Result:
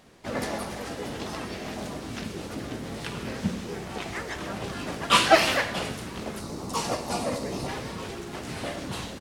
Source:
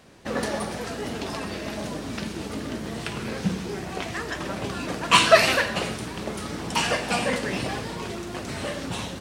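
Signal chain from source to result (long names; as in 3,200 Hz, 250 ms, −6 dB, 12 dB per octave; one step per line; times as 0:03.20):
gain on a spectral selection 0:06.40–0:07.68, 1,200–3,600 Hz −10 dB
pitch-shifted copies added −12 semitones −9 dB, +3 semitones −3 dB
level −5 dB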